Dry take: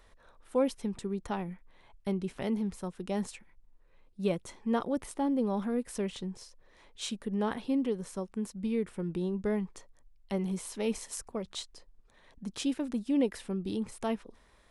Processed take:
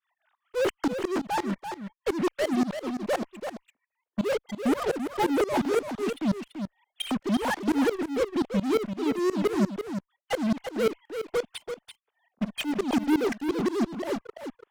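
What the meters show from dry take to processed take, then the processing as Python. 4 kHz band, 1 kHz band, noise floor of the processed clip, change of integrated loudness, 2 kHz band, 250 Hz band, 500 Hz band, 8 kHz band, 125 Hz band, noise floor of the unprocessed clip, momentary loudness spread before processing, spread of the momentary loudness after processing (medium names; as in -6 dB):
+7.0 dB, +8.5 dB, under -85 dBFS, +5.5 dB, +11.5 dB, +5.0 dB, +7.0 dB, +1.0 dB, +2.0 dB, -62 dBFS, 11 LU, 12 LU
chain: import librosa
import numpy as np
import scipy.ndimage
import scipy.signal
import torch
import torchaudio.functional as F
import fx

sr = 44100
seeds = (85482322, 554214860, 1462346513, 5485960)

p1 = fx.sine_speech(x, sr)
p2 = fx.fuzz(p1, sr, gain_db=47.0, gate_db=-49.0)
p3 = p1 + F.gain(torch.from_numpy(p2), -9.0).numpy()
p4 = fx.tremolo_shape(p3, sr, shape='saw_up', hz=5.7, depth_pct=95)
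y = p4 + 10.0 ** (-8.0 / 20.0) * np.pad(p4, (int(337 * sr / 1000.0), 0))[:len(p4)]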